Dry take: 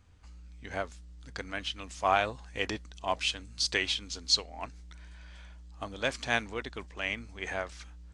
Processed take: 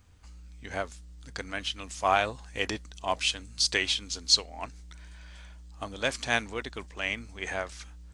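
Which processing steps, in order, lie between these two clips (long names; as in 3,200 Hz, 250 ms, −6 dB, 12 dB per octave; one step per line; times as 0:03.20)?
high-shelf EQ 7,900 Hz +10 dB
level +1.5 dB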